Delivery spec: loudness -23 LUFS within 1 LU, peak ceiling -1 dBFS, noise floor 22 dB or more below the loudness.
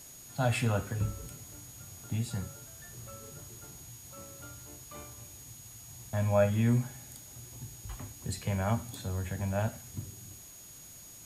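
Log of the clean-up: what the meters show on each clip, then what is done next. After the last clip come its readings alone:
steady tone 6.7 kHz; tone level -51 dBFS; noise floor -50 dBFS; noise floor target -56 dBFS; loudness -33.5 LUFS; peak level -14.0 dBFS; loudness target -23.0 LUFS
-> band-stop 6.7 kHz, Q 30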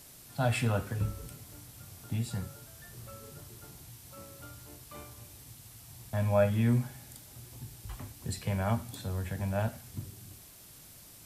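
steady tone not found; noise floor -53 dBFS; noise floor target -55 dBFS
-> noise print and reduce 6 dB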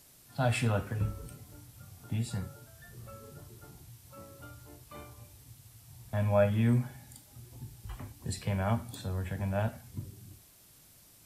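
noise floor -59 dBFS; loudness -32.5 LUFS; peak level -14.0 dBFS; loudness target -23.0 LUFS
-> trim +9.5 dB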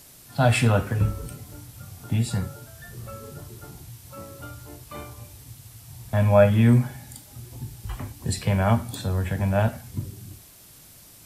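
loudness -23.0 LUFS; peak level -4.5 dBFS; noise floor -49 dBFS

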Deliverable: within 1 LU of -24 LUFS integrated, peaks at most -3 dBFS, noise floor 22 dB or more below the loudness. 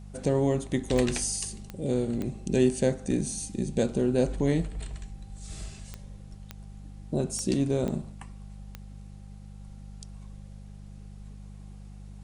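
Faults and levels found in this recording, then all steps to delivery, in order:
clicks found 8; hum 50 Hz; highest harmonic 200 Hz; hum level -42 dBFS; loudness -28.0 LUFS; peak level -10.0 dBFS; loudness target -24.0 LUFS
-> de-click; de-hum 50 Hz, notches 4; trim +4 dB

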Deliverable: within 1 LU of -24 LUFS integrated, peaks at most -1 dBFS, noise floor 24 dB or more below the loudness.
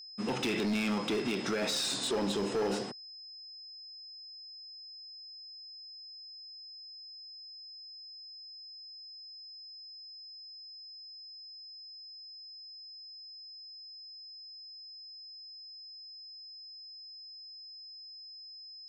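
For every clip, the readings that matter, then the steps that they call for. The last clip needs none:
clipped samples 1.2%; clipping level -27.5 dBFS; steady tone 5.1 kHz; tone level -46 dBFS; loudness -39.0 LUFS; peak level -27.5 dBFS; loudness target -24.0 LUFS
-> clip repair -27.5 dBFS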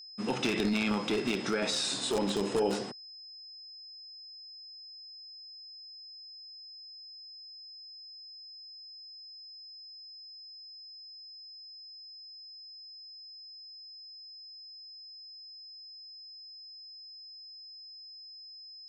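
clipped samples 0.0%; steady tone 5.1 kHz; tone level -46 dBFS
-> band-stop 5.1 kHz, Q 30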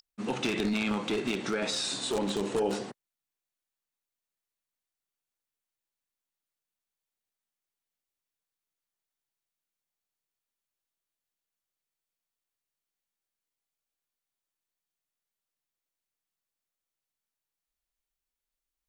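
steady tone not found; loudness -30.5 LUFS; peak level -18.0 dBFS; loudness target -24.0 LUFS
-> trim +6.5 dB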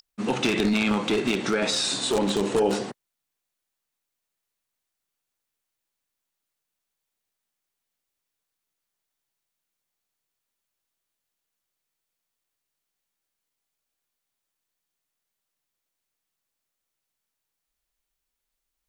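loudness -24.0 LUFS; peak level -11.5 dBFS; noise floor -84 dBFS

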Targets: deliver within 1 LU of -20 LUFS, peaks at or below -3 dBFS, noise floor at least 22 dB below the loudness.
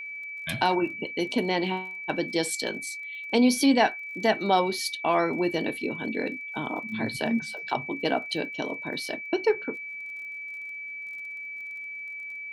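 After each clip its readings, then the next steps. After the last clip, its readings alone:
tick rate 30 per s; steady tone 2.3 kHz; tone level -35 dBFS; loudness -28.0 LUFS; peak level -8.5 dBFS; loudness target -20.0 LUFS
-> de-click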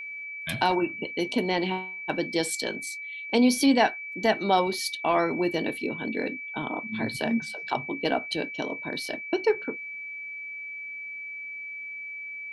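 tick rate 0.080 per s; steady tone 2.3 kHz; tone level -35 dBFS
-> band-stop 2.3 kHz, Q 30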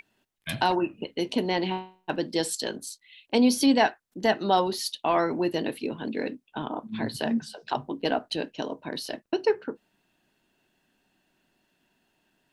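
steady tone not found; loudness -27.5 LUFS; peak level -8.5 dBFS; loudness target -20.0 LUFS
-> trim +7.5 dB; peak limiter -3 dBFS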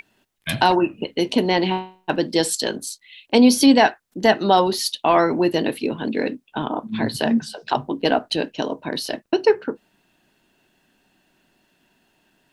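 loudness -20.5 LUFS; peak level -3.0 dBFS; noise floor -66 dBFS

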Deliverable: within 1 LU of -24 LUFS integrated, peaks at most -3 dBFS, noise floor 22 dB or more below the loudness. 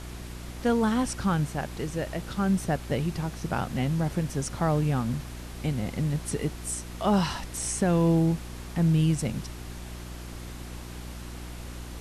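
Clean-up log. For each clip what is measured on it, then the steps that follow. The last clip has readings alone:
hum 60 Hz; highest harmonic 360 Hz; hum level -38 dBFS; noise floor -40 dBFS; noise floor target -50 dBFS; loudness -28.0 LUFS; peak level -12.5 dBFS; loudness target -24.0 LUFS
-> de-hum 60 Hz, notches 6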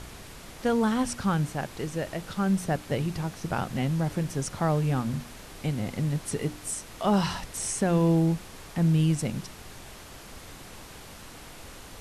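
hum not found; noise floor -46 dBFS; noise floor target -50 dBFS
-> noise print and reduce 6 dB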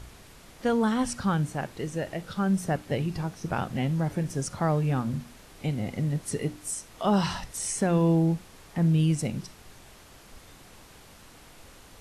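noise floor -52 dBFS; loudness -28.0 LUFS; peak level -12.5 dBFS; loudness target -24.0 LUFS
-> trim +4 dB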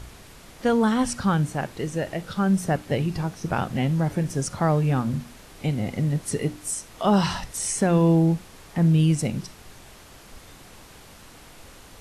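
loudness -24.0 LUFS; peak level -8.5 dBFS; noise floor -48 dBFS

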